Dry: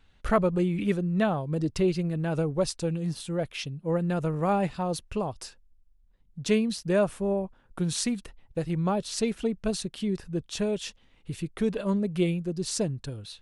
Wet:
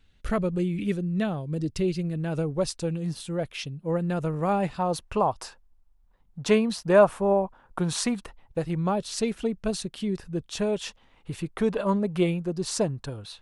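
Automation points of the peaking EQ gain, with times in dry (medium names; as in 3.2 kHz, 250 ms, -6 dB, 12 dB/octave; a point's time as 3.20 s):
peaking EQ 940 Hz 1.6 oct
1.88 s -7.5 dB
2.68 s +0.5 dB
4.58 s +0.5 dB
5.16 s +12.5 dB
8.13 s +12.5 dB
8.85 s +2 dB
10.47 s +2 dB
10.87 s +9.5 dB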